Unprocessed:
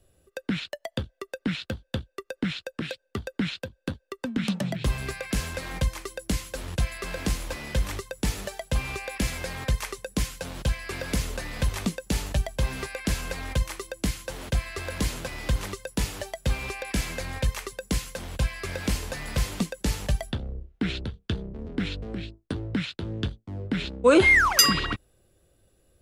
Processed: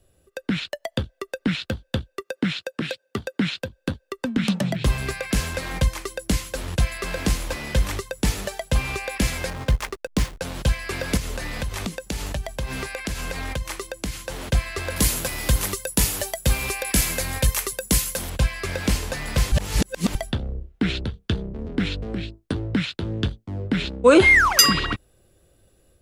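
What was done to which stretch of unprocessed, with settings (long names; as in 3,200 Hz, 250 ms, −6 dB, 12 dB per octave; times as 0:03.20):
0:02.21–0:03.60: high-pass filter 110 Hz
0:09.50–0:10.42: slack as between gear wheels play −30.5 dBFS
0:11.17–0:14.43: downward compressor, threshold −29 dBFS
0:14.96–0:18.30: parametric band 13,000 Hz +14.5 dB 1.3 octaves
0:19.52–0:20.15: reverse
whole clip: automatic gain control gain up to 3.5 dB; level +1.5 dB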